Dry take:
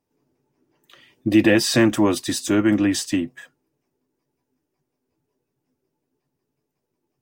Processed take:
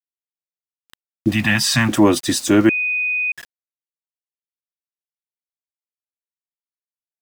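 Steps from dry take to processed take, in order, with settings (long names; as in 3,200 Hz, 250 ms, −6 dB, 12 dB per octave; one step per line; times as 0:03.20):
0:01.31–0:01.89: Chebyshev band-stop filter 190–910 Hz, order 2
centre clipping without the shift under −38 dBFS
0:02.69–0:03.32: beep over 2,490 Hz −22.5 dBFS
level +5 dB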